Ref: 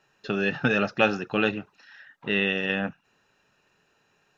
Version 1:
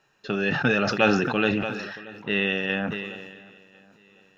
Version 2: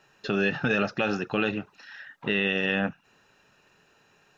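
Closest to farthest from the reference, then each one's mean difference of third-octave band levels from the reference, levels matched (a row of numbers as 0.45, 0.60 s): 2, 1; 2.0, 5.0 dB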